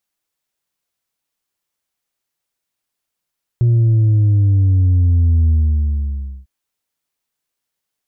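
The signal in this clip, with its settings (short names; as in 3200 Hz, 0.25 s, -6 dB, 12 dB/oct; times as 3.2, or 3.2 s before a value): sub drop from 120 Hz, over 2.85 s, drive 2.5 dB, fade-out 0.97 s, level -10 dB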